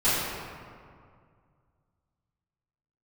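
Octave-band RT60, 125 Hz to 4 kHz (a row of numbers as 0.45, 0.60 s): 2.9, 2.4, 2.2, 2.1, 1.7, 1.1 s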